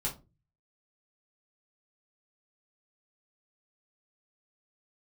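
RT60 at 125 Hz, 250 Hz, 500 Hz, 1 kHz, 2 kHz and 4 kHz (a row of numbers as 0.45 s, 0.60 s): 0.65 s, 0.45 s, 0.35 s, 0.25 s, 0.20 s, 0.20 s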